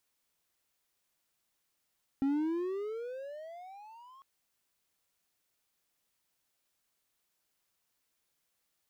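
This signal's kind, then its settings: gliding synth tone triangle, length 2.00 s, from 268 Hz, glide +24.5 st, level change -27 dB, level -24 dB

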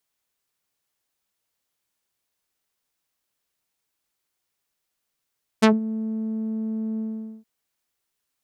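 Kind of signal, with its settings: synth note saw A3 12 dB/oct, low-pass 230 Hz, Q 1, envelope 6 oct, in 0.11 s, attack 16 ms, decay 0.16 s, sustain -13 dB, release 0.45 s, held 1.37 s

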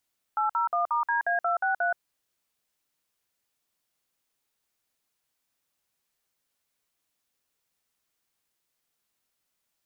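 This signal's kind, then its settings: DTMF "801*DA263", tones 0.125 s, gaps 54 ms, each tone -25.5 dBFS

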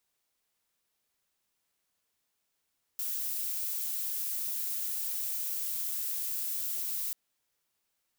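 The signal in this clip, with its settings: noise violet, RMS -34 dBFS 4.14 s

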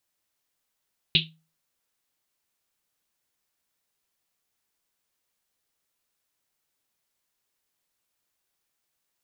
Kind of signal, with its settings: Risset drum, pitch 160 Hz, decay 0.37 s, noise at 3300 Hz, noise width 1400 Hz, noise 70%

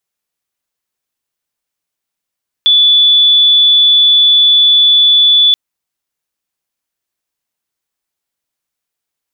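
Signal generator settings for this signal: tone sine 3460 Hz -4.5 dBFS 2.88 s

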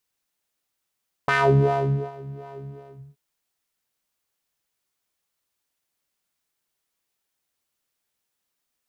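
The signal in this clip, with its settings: synth patch with filter wobble C#3, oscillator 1 square, interval 0 st, filter bandpass, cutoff 200 Hz, Q 2.3, filter envelope 2.5 oct, filter decay 0.30 s, attack 3.4 ms, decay 0.83 s, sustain -23.5 dB, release 0.52 s, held 1.36 s, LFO 2.7 Hz, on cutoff 1 oct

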